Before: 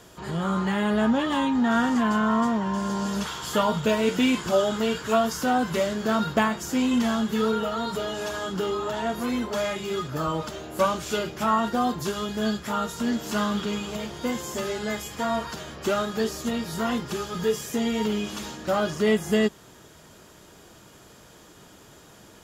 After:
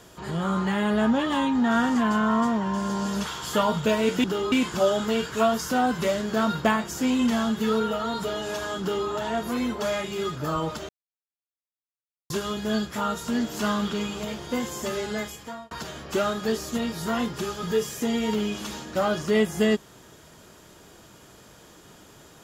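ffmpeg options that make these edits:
ffmpeg -i in.wav -filter_complex "[0:a]asplit=6[link_01][link_02][link_03][link_04][link_05][link_06];[link_01]atrim=end=4.242[link_07];[link_02]atrim=start=8.518:end=8.802[link_08];[link_03]atrim=start=4.238:end=10.61,asetpts=PTS-STARTPTS,afade=type=out:start_time=6.368:duration=0.004:curve=hsin[link_09];[link_04]atrim=start=10.61:end=12.02,asetpts=PTS-STARTPTS,volume=0[link_10];[link_05]atrim=start=12.02:end=15.43,asetpts=PTS-STARTPTS,afade=type=in:duration=0.004:curve=hsin,afade=type=out:start_time=2.82:duration=0.59[link_11];[link_06]atrim=start=15.43,asetpts=PTS-STARTPTS,afade=type=in:duration=0.004:curve=hsin[link_12];[link_07][link_08]acrossfade=duration=0.004:curve1=hsin:curve2=hsin[link_13];[link_09][link_10][link_11][link_12]concat=n=4:v=0:a=1[link_14];[link_13][link_14]acrossfade=duration=0.004:curve1=hsin:curve2=hsin" out.wav

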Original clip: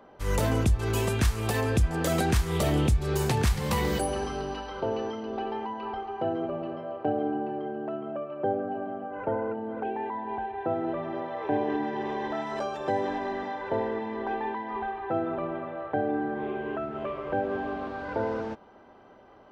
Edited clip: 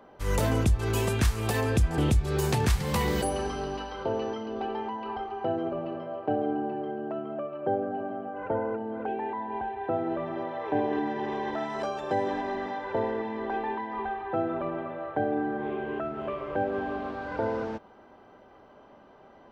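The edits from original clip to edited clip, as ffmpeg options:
ffmpeg -i in.wav -filter_complex "[0:a]asplit=2[link_01][link_02];[link_01]atrim=end=1.982[link_03];[link_02]atrim=start=2.748[link_04];[link_03][link_04]acrossfade=duration=0.004:curve1=hsin:curve2=hsin" out.wav

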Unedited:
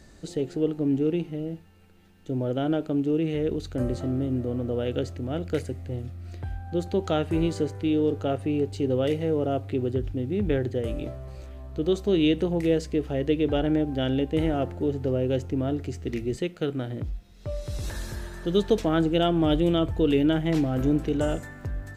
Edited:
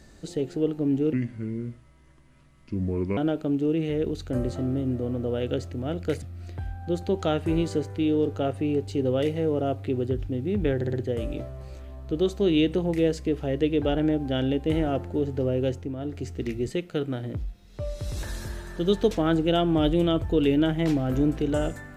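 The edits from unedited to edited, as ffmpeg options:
ffmpeg -i in.wav -filter_complex "[0:a]asplit=8[link_01][link_02][link_03][link_04][link_05][link_06][link_07][link_08];[link_01]atrim=end=1.134[link_09];[link_02]atrim=start=1.13:end=2.62,asetpts=PTS-STARTPTS,asetrate=32193,aresample=44100,atrim=end_sample=90012,asetpts=PTS-STARTPTS[link_10];[link_03]atrim=start=2.616:end=5.672[link_11];[link_04]atrim=start=6.068:end=10.662[link_12];[link_05]atrim=start=10.598:end=10.662[link_13];[link_06]atrim=start=10.598:end=10.662[link_14];[link_07]atrim=start=10.598:end=15.63,asetpts=PTS-STARTPTS,afade=type=out:start_time=4.722:duration=0.31:silence=0.398107[link_15];[link_08]atrim=start=15.63,asetpts=PTS-STARTPTS,afade=type=in:duration=0.31:silence=0.398107[link_16];[link_09][link_10]acrossfade=duration=0.004:curve1=hsin:curve2=hsin[link_17];[link_17][link_11]acrossfade=duration=0.004:curve1=hsin:curve2=hsin[link_18];[link_18][link_12]acrossfade=duration=0.004:curve1=hsin:curve2=hsin[link_19];[link_19][link_13]acrossfade=duration=0.004:curve1=hsin:curve2=hsin[link_20];[link_20][link_14]acrossfade=duration=0.004:curve1=hsin:curve2=hsin[link_21];[link_15][link_16]concat=n=2:v=0:a=1[link_22];[link_21][link_22]acrossfade=duration=0.004:curve1=hsin:curve2=hsin" out.wav

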